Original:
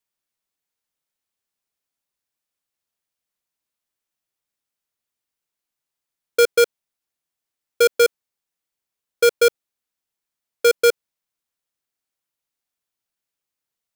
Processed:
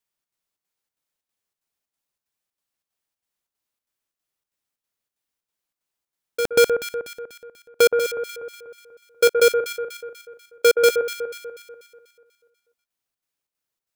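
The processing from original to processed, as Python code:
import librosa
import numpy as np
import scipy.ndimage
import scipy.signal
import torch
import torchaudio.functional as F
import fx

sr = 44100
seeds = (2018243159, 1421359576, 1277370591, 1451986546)

y = fx.leveller(x, sr, passes=5, at=(6.4, 7.87))
y = fx.chopper(y, sr, hz=3.1, depth_pct=65, duty_pct=75)
y = fx.echo_alternate(y, sr, ms=122, hz=1600.0, feedback_pct=67, wet_db=-6)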